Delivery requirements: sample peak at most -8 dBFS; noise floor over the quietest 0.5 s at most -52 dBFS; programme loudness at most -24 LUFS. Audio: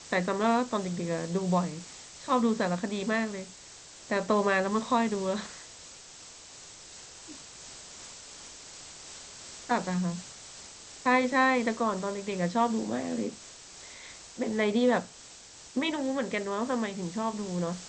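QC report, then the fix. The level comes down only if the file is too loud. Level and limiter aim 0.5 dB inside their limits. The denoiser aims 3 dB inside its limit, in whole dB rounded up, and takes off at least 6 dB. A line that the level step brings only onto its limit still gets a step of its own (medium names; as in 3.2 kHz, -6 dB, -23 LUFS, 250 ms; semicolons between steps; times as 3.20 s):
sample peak -12.0 dBFS: pass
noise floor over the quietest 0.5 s -50 dBFS: fail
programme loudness -29.0 LUFS: pass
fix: noise reduction 6 dB, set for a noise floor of -50 dBFS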